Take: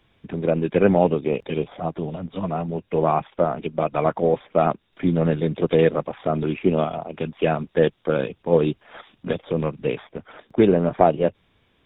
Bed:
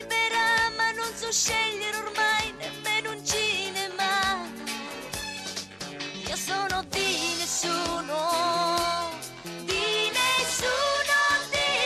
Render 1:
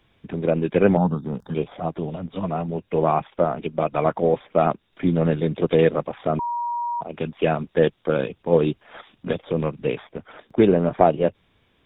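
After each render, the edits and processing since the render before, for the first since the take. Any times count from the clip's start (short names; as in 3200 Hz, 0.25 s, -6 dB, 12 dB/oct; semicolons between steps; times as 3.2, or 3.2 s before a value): 0.97–1.55 EQ curve 120 Hz 0 dB, 190 Hz +5 dB, 370 Hz -12 dB, 560 Hz -12 dB, 880 Hz 0 dB, 1500 Hz +2 dB, 2400 Hz -28 dB, 4900 Hz +8 dB; 6.39–7.01 bleep 952 Hz -23 dBFS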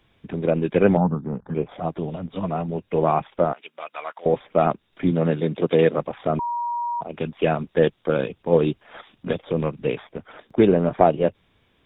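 1–1.69 LPF 2200 Hz 24 dB/oct; 3.53–4.26 Bessel high-pass 1700 Hz; 5.11–5.96 HPF 130 Hz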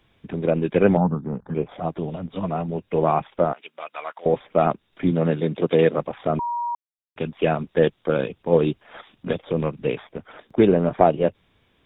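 6.75–7.16 mute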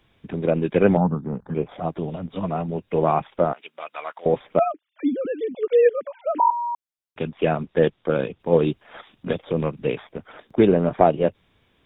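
4.59–6.51 sine-wave speech; 7.25–8.4 air absorption 98 m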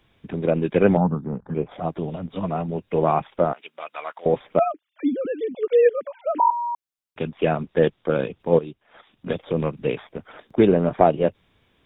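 1.25–1.71 air absorption 200 m; 8.59–9.39 fade in quadratic, from -14 dB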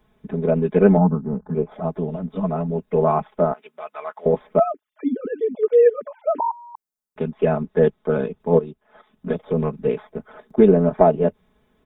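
bell 3000 Hz -12 dB 1.4 oct; comb 4.7 ms, depth 89%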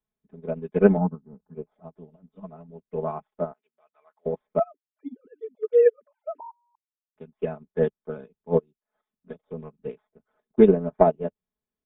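upward expander 2.5:1, over -29 dBFS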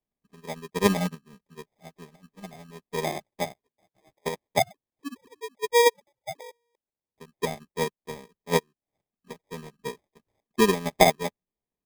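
sample-and-hold 31×; random-step tremolo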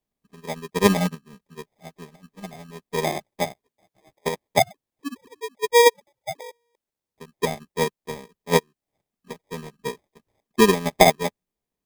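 gain +4.5 dB; limiter -2 dBFS, peak gain reduction 2.5 dB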